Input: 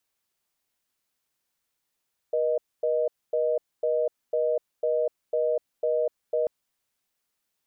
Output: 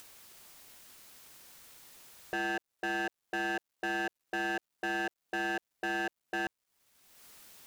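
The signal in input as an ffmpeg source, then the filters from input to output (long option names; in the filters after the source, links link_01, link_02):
-f lavfi -i "aevalsrc='0.0596*(sin(2*PI*480*t)+sin(2*PI*620*t))*clip(min(mod(t,0.5),0.25-mod(t,0.5))/0.005,0,1)':duration=4.14:sample_rate=44100"
-af "acompressor=mode=upward:threshold=-34dB:ratio=2.5,aeval=exprs='0.0422*(abs(mod(val(0)/0.0422+3,4)-2)-1)':channel_layout=same,acrusher=bits=11:mix=0:aa=0.000001"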